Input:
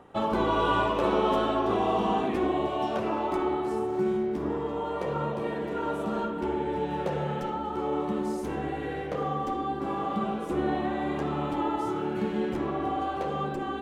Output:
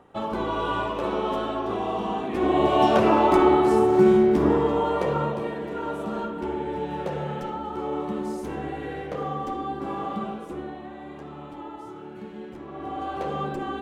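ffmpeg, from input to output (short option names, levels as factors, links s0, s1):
-af "volume=12.6,afade=t=in:st=2.29:d=0.52:silence=0.237137,afade=t=out:st=4.44:d=1.1:silence=0.298538,afade=t=out:st=10.07:d=0.67:silence=0.316228,afade=t=in:st=12.67:d=0.59:silence=0.266073"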